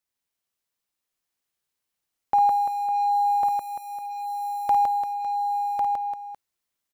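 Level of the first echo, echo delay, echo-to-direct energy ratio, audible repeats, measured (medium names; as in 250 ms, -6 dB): -6.5 dB, 53 ms, 2.0 dB, 9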